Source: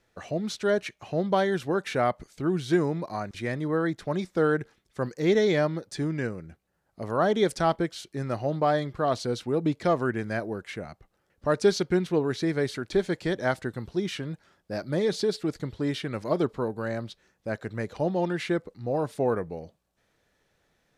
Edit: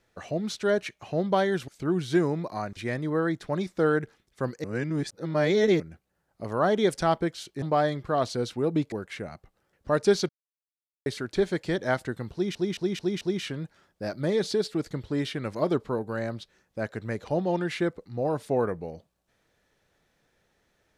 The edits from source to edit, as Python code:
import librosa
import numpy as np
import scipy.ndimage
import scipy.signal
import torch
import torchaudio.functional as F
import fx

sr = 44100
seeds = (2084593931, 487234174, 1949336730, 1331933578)

y = fx.edit(x, sr, fx.cut(start_s=1.68, length_s=0.58),
    fx.reverse_span(start_s=5.22, length_s=1.16),
    fx.cut(start_s=8.2, length_s=0.32),
    fx.cut(start_s=9.82, length_s=0.67),
    fx.silence(start_s=11.86, length_s=0.77),
    fx.stutter(start_s=13.9, slice_s=0.22, count=5), tone=tone)